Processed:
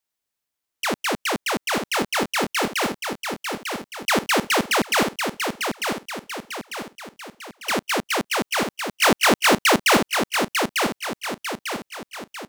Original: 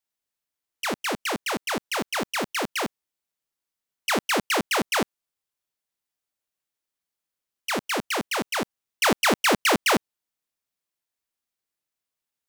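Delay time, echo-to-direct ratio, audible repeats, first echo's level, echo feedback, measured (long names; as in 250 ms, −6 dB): 897 ms, −4.5 dB, 5, −5.5 dB, 46%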